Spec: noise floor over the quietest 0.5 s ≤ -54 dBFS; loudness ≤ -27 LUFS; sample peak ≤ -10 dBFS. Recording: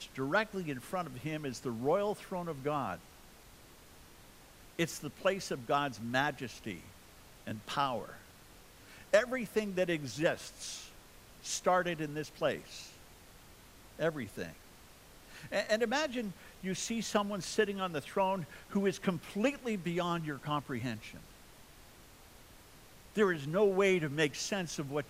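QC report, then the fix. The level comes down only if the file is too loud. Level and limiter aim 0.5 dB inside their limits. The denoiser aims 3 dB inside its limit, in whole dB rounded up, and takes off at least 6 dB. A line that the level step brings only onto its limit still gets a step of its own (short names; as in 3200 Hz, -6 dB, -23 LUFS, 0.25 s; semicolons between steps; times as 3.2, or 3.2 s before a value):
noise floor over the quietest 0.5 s -57 dBFS: OK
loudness -34.5 LUFS: OK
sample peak -11.5 dBFS: OK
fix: none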